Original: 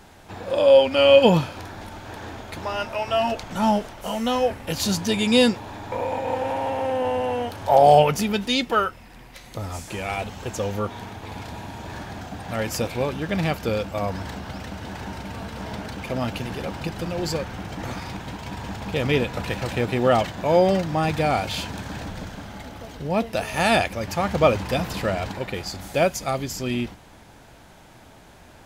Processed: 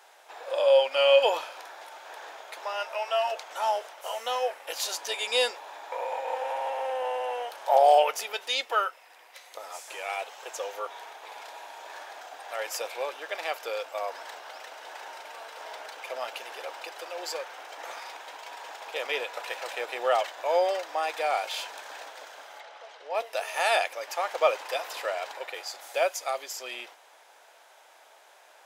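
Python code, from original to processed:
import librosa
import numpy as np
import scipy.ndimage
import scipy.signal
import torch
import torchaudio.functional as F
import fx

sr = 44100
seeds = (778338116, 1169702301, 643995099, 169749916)

y = fx.bandpass_edges(x, sr, low_hz=400.0, high_hz=5000.0, at=(22.6, 23.15))
y = scipy.signal.sosfilt(scipy.signal.cheby2(4, 50, 200.0, 'highpass', fs=sr, output='sos'), y)
y = fx.notch(y, sr, hz=4400.0, q=28.0)
y = y * librosa.db_to_amplitude(-4.0)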